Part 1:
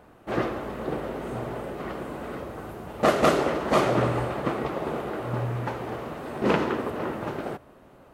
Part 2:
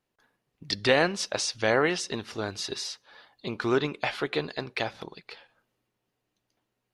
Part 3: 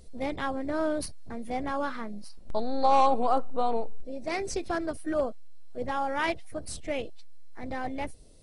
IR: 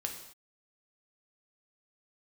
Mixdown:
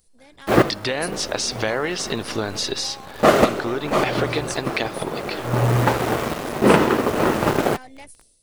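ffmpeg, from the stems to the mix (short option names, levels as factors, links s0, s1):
-filter_complex "[0:a]acontrast=84,acrusher=bits=7:dc=4:mix=0:aa=0.000001,aeval=exprs='sgn(val(0))*max(abs(val(0))-0.0251,0)':c=same,adelay=200,volume=0.75[s0];[1:a]acompressor=threshold=0.0178:ratio=4,volume=1.12,asplit=2[s1][s2];[2:a]acompressor=threshold=0.02:ratio=6,crystalizer=i=6:c=0,volume=0.141[s3];[s2]apad=whole_len=367745[s4];[s0][s4]sidechaincompress=threshold=0.00316:ratio=4:attack=8.7:release=449[s5];[s5][s1][s3]amix=inputs=3:normalize=0,dynaudnorm=f=130:g=5:m=3.98"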